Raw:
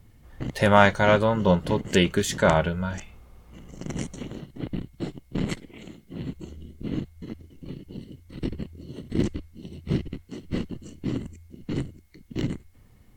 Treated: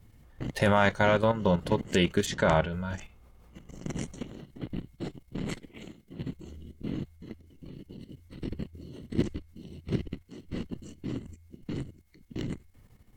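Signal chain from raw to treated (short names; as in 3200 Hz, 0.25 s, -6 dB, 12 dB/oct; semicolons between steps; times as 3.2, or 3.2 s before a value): 2.25–2.71 LPF 5100 Hz -> 8800 Hz 12 dB/oct; level quantiser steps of 11 dB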